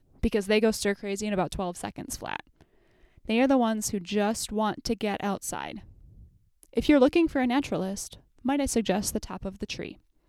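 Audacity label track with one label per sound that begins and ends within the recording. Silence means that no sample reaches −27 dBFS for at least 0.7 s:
3.290000	5.720000	sound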